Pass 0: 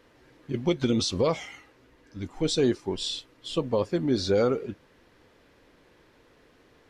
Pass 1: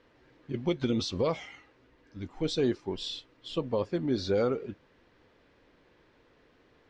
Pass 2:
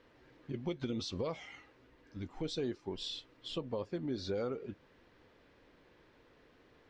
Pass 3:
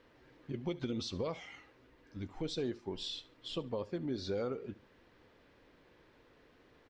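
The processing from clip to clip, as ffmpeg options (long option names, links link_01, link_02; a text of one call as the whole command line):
ffmpeg -i in.wav -af "lowpass=4900,volume=-4dB" out.wav
ffmpeg -i in.wav -af "acompressor=threshold=-39dB:ratio=2,volume=-1dB" out.wav
ffmpeg -i in.wav -af "aecho=1:1:71|142:0.106|0.0307" out.wav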